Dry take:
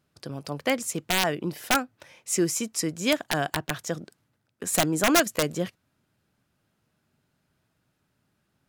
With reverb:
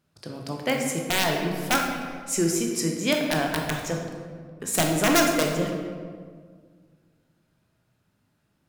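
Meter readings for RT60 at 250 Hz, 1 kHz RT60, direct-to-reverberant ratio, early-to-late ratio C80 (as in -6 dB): 2.2 s, 1.7 s, 1.0 dB, 5.0 dB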